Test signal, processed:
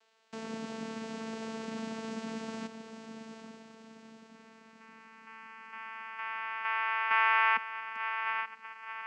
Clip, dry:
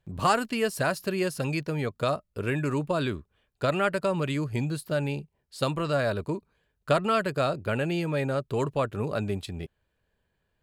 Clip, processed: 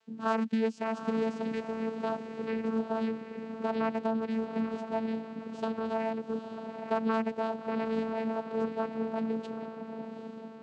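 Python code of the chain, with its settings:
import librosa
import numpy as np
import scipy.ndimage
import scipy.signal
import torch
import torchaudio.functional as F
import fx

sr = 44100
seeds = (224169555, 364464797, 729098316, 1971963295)

y = fx.dmg_noise_band(x, sr, seeds[0], low_hz=390.0, high_hz=5400.0, level_db=-64.0)
y = fx.echo_diffused(y, sr, ms=831, feedback_pct=48, wet_db=-8.0)
y = fx.vocoder(y, sr, bands=8, carrier='saw', carrier_hz=223.0)
y = y * librosa.db_to_amplitude(-4.0)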